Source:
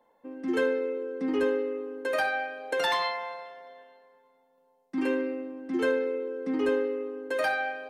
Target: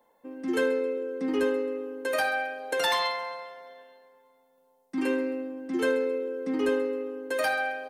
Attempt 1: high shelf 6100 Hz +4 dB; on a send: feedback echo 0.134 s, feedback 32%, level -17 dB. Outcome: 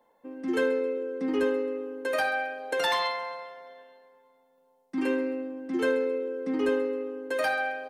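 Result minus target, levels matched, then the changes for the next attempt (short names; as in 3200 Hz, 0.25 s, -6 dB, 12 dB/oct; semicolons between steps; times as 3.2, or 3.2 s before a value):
8000 Hz band -4.0 dB
change: high shelf 6100 Hz +11 dB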